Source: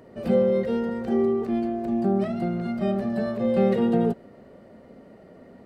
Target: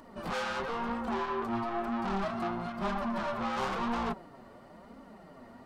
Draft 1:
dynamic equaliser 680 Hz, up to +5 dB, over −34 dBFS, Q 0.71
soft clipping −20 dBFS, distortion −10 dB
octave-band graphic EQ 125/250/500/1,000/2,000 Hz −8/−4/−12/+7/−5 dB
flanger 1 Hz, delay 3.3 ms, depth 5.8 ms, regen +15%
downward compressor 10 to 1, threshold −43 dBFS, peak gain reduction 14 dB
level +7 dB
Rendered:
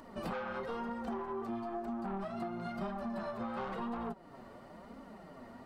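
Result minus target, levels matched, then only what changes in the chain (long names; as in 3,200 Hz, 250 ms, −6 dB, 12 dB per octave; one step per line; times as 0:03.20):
downward compressor: peak gain reduction +14 dB; soft clipping: distortion −5 dB
change: soft clipping −29.5 dBFS, distortion −4 dB
remove: downward compressor 10 to 1, threshold −43 dBFS, peak gain reduction 14 dB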